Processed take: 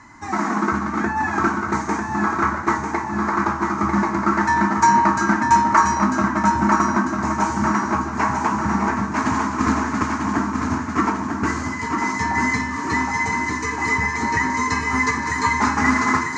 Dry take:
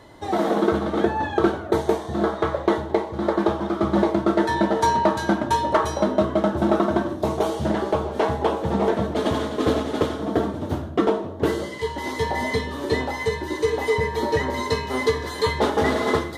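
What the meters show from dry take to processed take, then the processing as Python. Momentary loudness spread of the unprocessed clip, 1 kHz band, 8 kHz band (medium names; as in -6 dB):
5 LU, +6.5 dB, +8.5 dB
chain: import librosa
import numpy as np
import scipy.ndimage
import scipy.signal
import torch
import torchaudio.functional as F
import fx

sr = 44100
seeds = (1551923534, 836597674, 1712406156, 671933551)

p1 = fx.curve_eq(x, sr, hz=(160.0, 250.0, 520.0, 990.0, 2400.0, 3400.0, 4800.0, 6900.0, 11000.0), db=(0, 7, -19, 9, 8, -14, 4, 12, -19))
p2 = p1 + fx.echo_feedback(p1, sr, ms=946, feedback_pct=55, wet_db=-5.0, dry=0)
y = p2 * 10.0 ** (-1.0 / 20.0)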